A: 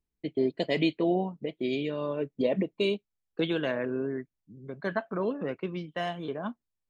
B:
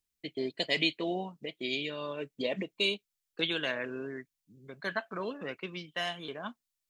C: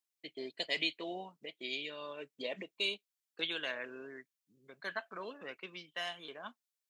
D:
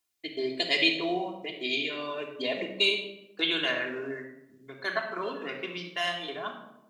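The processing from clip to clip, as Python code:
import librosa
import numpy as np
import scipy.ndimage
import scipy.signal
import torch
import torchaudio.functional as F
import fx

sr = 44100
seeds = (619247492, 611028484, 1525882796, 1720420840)

y1 = fx.tilt_shelf(x, sr, db=-9.0, hz=1400.0)
y2 = fx.highpass(y1, sr, hz=520.0, slope=6)
y2 = y2 * 10.0 ** (-4.5 / 20.0)
y3 = fx.room_shoebox(y2, sr, seeds[0], volume_m3=3100.0, walls='furnished', distance_m=3.2)
y3 = y3 * 10.0 ** (7.5 / 20.0)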